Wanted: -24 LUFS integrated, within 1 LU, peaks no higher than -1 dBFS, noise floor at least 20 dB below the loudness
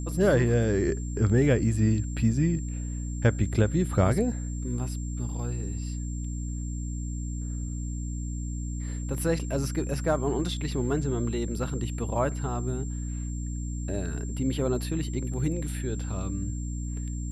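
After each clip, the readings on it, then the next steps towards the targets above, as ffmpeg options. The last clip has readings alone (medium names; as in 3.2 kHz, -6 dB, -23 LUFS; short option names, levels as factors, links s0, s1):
hum 60 Hz; highest harmonic 300 Hz; hum level -30 dBFS; steady tone 7.4 kHz; tone level -45 dBFS; loudness -29.0 LUFS; peak level -11.5 dBFS; loudness target -24.0 LUFS
-> -af "bandreject=f=60:t=h:w=6,bandreject=f=120:t=h:w=6,bandreject=f=180:t=h:w=6,bandreject=f=240:t=h:w=6,bandreject=f=300:t=h:w=6"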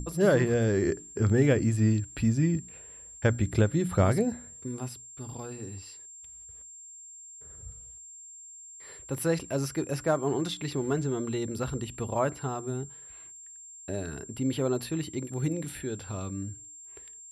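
hum not found; steady tone 7.4 kHz; tone level -45 dBFS
-> -af "bandreject=f=7400:w=30"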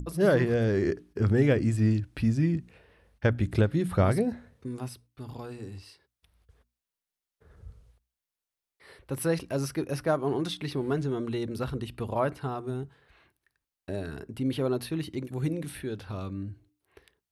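steady tone not found; loudness -29.0 LUFS; peak level -12.5 dBFS; loudness target -24.0 LUFS
-> -af "volume=1.78"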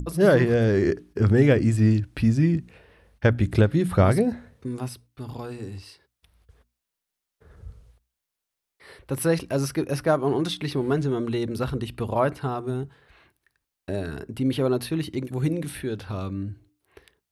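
loudness -24.0 LUFS; peak level -7.5 dBFS; noise floor -85 dBFS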